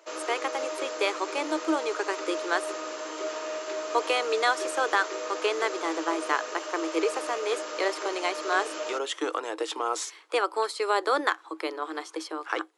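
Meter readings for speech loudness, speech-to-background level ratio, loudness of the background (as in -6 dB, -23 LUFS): -29.5 LUFS, 5.0 dB, -34.5 LUFS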